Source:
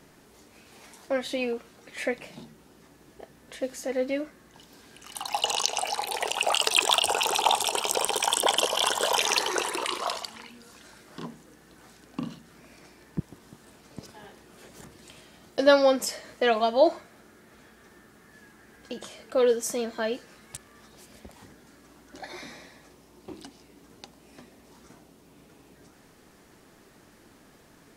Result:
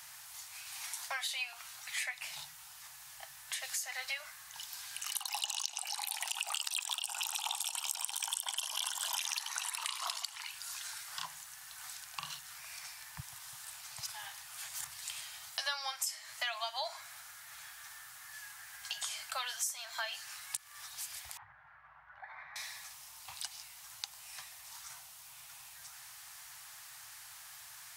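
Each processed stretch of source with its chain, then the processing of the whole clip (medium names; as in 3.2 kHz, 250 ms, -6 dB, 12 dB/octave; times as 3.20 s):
21.37–22.56 s: low-pass 1.7 kHz 24 dB/octave + compression 2:1, threshold -48 dBFS
whole clip: inverse Chebyshev band-stop 220–460 Hz, stop band 50 dB; tilt EQ +3.5 dB/octave; compression 6:1, threshold -37 dBFS; trim +2 dB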